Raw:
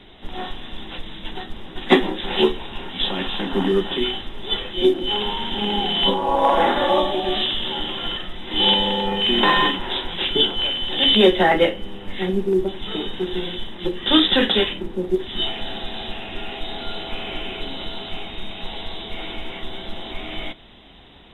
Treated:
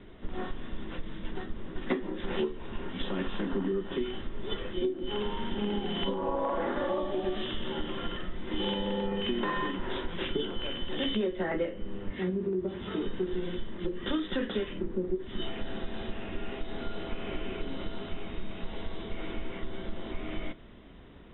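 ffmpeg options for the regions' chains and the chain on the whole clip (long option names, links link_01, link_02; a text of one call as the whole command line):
ffmpeg -i in.wav -filter_complex "[0:a]asettb=1/sr,asplit=3[link_01][link_02][link_03];[link_01]atrim=end=12.104[link_04];[link_02]atrim=start=12.1:end=13.02,asetpts=PTS-STARTPTS,afade=type=in:duration=0.004:curve=qsin,afade=type=out:start_time=0.916:duration=0.004:curve=qsin,highpass=56,acompressor=threshold=-24dB:ratio=2:attack=3.2:release=140:knee=1:detection=peak,asplit=2[link_05][link_06];[link_06]adelay=17,volume=-6dB[link_07];[link_05][link_07]amix=inputs=2:normalize=0,atrim=end_sample=40572[link_08];[link_03]atrim=start=13.016[link_09];[link_04][link_08]acrossfade=duration=0.004:curve1=hsin:curve2=qsin[link_10];[link_10][link_09]acrossfade=duration=0.004:curve1=qsin:curve2=hsin,lowpass=1500,equalizer=frequency=800:width=3:gain=-11,acompressor=threshold=-25dB:ratio=12,volume=-1.5dB" out.wav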